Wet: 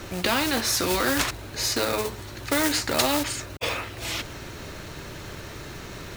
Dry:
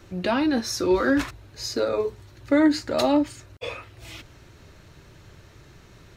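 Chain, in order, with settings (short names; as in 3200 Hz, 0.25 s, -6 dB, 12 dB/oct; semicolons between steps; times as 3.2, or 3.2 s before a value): companded quantiser 6-bit; spectral compressor 2:1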